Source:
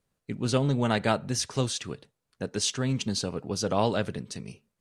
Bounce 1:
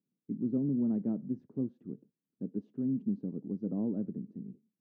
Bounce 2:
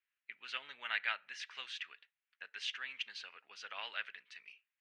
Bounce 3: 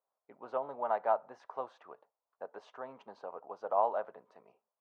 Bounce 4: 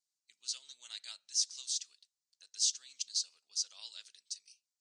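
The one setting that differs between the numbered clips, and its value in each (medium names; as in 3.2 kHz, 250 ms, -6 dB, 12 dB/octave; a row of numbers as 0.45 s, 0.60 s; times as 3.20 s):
Butterworth band-pass, frequency: 240 Hz, 2.2 kHz, 830 Hz, 5.9 kHz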